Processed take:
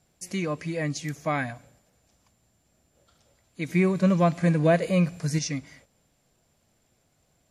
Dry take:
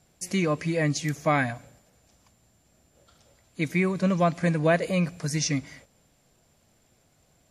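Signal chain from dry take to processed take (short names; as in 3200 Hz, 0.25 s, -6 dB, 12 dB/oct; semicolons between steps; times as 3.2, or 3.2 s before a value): 3.68–5.39 harmonic-percussive split harmonic +7 dB; gain -4 dB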